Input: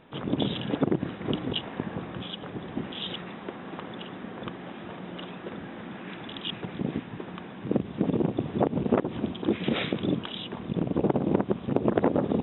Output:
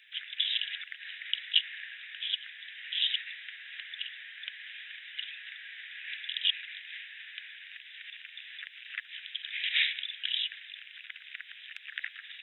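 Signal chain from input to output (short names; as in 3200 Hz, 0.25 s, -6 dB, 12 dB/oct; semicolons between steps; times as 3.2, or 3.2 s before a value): steep high-pass 1700 Hz 72 dB/oct; gain +7 dB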